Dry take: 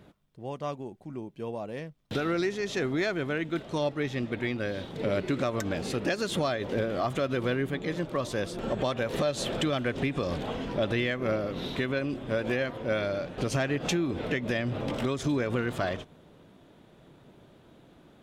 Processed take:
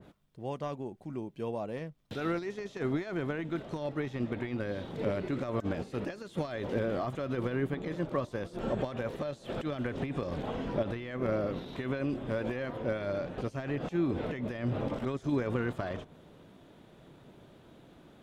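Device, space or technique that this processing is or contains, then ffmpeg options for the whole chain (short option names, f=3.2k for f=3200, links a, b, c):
de-esser from a sidechain: -filter_complex "[0:a]asplit=2[a][b];[b]highpass=7k,apad=whole_len=803911[c];[a][c]sidechaincompress=threshold=-57dB:ratio=16:attack=1.4:release=31,adynamicequalizer=threshold=0.00282:dfrequency=2000:dqfactor=0.7:tfrequency=2000:tqfactor=0.7:attack=5:release=100:ratio=0.375:range=3:mode=cutabove:tftype=highshelf"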